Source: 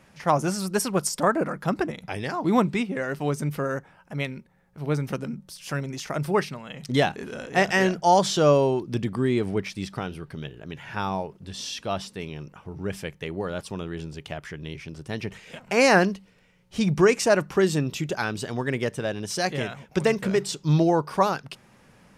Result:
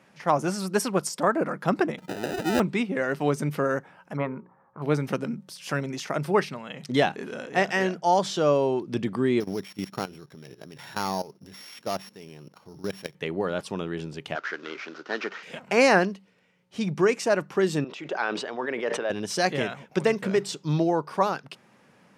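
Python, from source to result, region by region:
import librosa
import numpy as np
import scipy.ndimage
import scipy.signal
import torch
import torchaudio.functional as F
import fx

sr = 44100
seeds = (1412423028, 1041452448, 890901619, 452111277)

y = fx.chain(x, sr, fx.highpass(hz=240.0, slope=6),
    fx.sample_hold(seeds[0], rate_hz=1100.0, jitter_pct=0), at=(1.98, 2.6))
y = fx.chain(y, sr, fx.lowpass_res(hz=1100.0, q=5.5),
    fx.hum_notches(base_hz=60, count=7), at=(4.17, 4.82))
y = fx.chain(y, sr, fx.sample_sort(block=8),
    fx.level_steps(step_db=15), at=(9.4, 13.15))
y = fx.chain(y, sr, fx.cvsd(bps=32000),
    fx.highpass(hz=280.0, slope=24),
    fx.peak_eq(hz=1400.0, db=14.5, octaves=0.54), at=(14.35, 15.43))
y = fx.chain(y, sr, fx.highpass(hz=490.0, slope=12),
    fx.spacing_loss(db_at_10k=24),
    fx.sustainer(db_per_s=31.0), at=(17.84, 19.1))
y = scipy.signal.sosfilt(scipy.signal.butter(2, 170.0, 'highpass', fs=sr, output='sos'), y)
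y = fx.high_shelf(y, sr, hz=5800.0, db=-6.5)
y = fx.rider(y, sr, range_db=3, speed_s=0.5)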